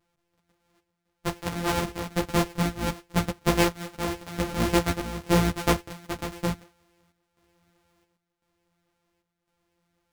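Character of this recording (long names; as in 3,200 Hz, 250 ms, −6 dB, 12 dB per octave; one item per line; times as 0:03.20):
a buzz of ramps at a fixed pitch in blocks of 256 samples
chopped level 0.95 Hz, depth 65%, duty 75%
a shimmering, thickened sound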